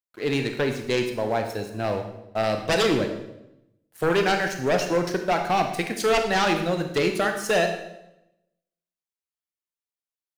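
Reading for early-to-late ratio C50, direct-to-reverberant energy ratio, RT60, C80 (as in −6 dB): 7.0 dB, 5.0 dB, 0.90 s, 10.0 dB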